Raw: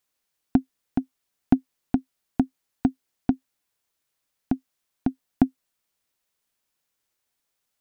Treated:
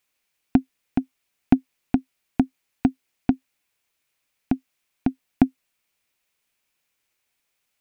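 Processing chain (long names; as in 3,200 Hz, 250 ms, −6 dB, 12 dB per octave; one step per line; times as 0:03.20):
parametric band 2,400 Hz +8 dB 0.6 octaves
level +2 dB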